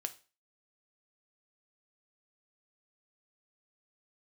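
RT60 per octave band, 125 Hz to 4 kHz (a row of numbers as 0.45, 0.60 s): 0.35, 0.35, 0.35, 0.35, 0.35, 0.35 s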